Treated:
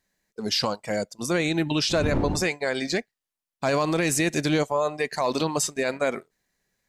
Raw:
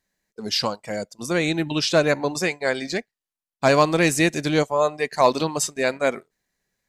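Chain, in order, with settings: 1.89–2.45 wind noise 240 Hz -24 dBFS; limiter -16 dBFS, peak gain reduction 11.5 dB; gain +1.5 dB

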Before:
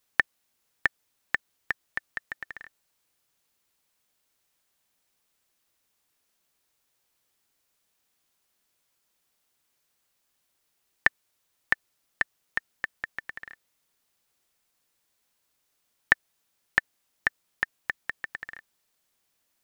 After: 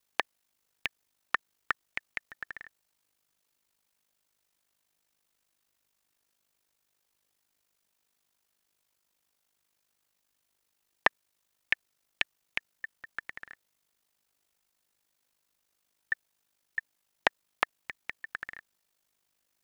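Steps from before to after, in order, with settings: ring modulator 25 Hz; Doppler distortion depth 0.81 ms

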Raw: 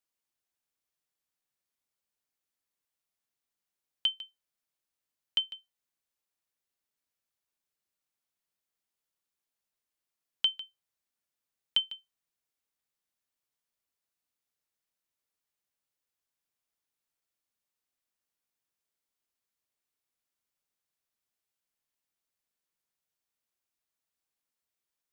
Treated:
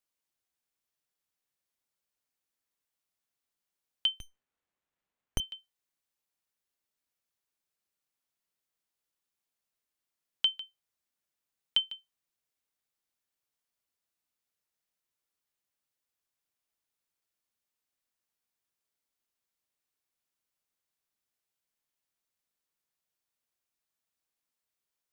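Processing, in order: 4.2–5.4 running maximum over 9 samples

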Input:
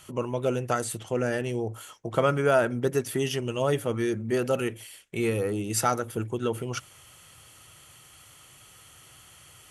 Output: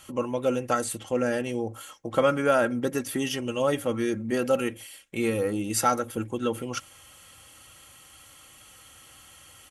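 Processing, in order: comb 3.7 ms, depth 53%

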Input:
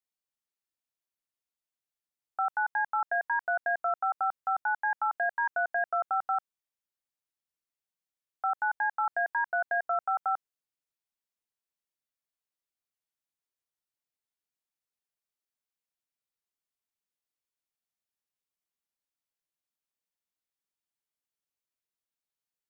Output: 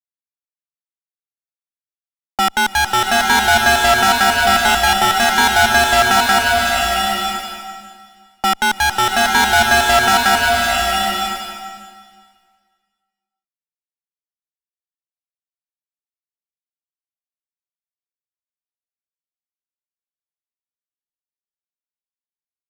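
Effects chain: low-pass opened by the level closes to 320 Hz, open at -24.5 dBFS; fuzz box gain 47 dB, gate -51 dBFS; bloom reverb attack 0.92 s, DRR -1.5 dB

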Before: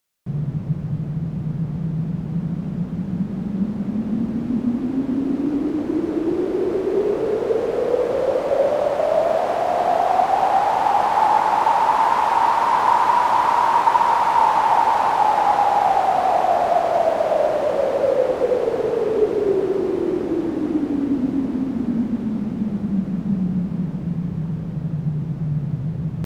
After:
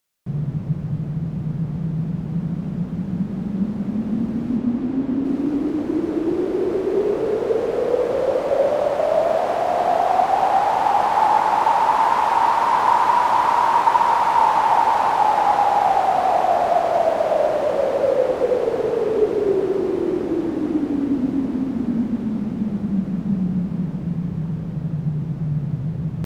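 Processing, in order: 4.56–5.24 high shelf 8200 Hz -> 5300 Hz -8 dB

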